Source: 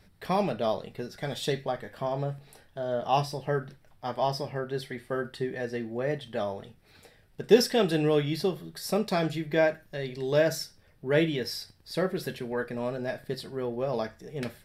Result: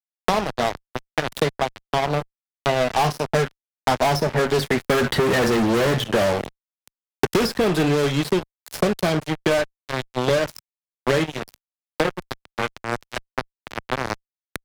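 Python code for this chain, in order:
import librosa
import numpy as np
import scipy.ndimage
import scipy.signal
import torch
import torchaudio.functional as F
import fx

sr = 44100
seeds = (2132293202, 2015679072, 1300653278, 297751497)

y = fx.doppler_pass(x, sr, speed_mps=14, closest_m=2.4, pass_at_s=5.45)
y = fx.fuzz(y, sr, gain_db=52.0, gate_db=-57.0)
y = fx.band_squash(y, sr, depth_pct=100)
y = y * 10.0 ** (-1.5 / 20.0)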